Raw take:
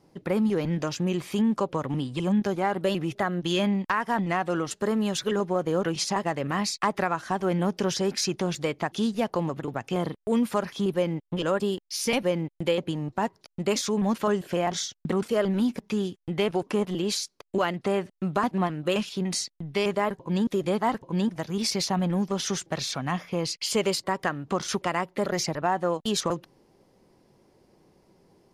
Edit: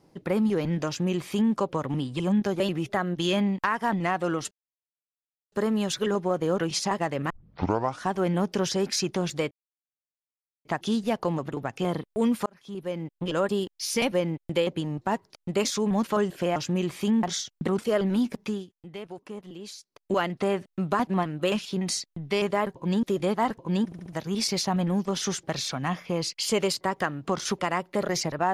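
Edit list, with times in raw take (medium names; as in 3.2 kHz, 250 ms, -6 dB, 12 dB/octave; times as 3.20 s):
0.87–1.54 s: copy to 14.67 s
2.60–2.86 s: delete
4.77 s: insert silence 1.01 s
6.55 s: tape start 0.74 s
8.76 s: insert silence 1.14 s
10.57–11.51 s: fade in
15.88–17.56 s: dip -13.5 dB, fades 0.22 s
21.29 s: stutter 0.07 s, 4 plays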